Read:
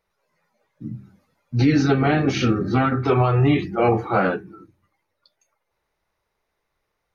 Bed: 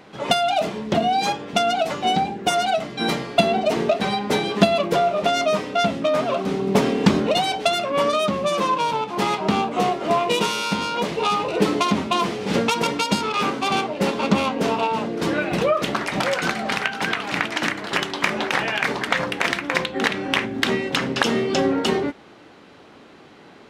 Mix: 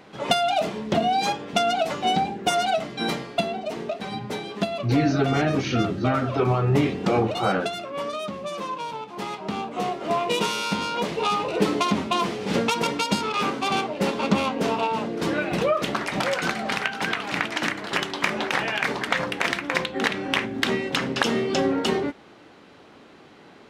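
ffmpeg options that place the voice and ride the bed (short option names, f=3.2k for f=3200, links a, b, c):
-filter_complex "[0:a]adelay=3300,volume=-4dB[a];[1:a]volume=5.5dB,afade=t=out:st=2.88:d=0.69:silence=0.398107,afade=t=in:st=9.45:d=1.04:silence=0.421697[b];[a][b]amix=inputs=2:normalize=0"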